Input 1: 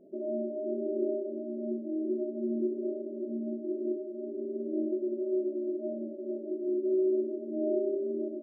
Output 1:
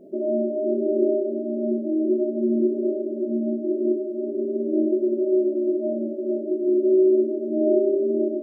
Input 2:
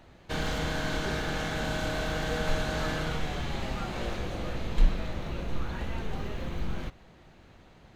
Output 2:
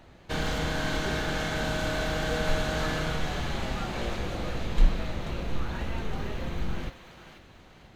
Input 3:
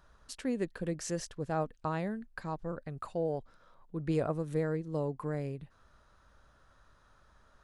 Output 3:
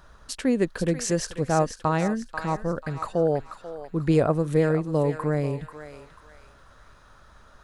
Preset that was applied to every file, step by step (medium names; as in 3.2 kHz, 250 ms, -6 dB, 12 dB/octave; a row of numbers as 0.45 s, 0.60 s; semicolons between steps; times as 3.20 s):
thinning echo 489 ms, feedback 42%, high-pass 1 kHz, level -7.5 dB; peak normalisation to -9 dBFS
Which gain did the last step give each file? +10.0 dB, +1.5 dB, +10.5 dB